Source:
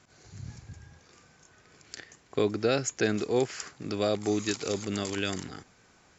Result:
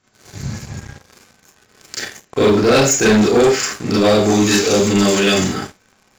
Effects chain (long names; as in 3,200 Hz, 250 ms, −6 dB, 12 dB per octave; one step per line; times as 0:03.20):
four-comb reverb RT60 0.33 s, combs from 29 ms, DRR −7.5 dB
leveller curve on the samples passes 3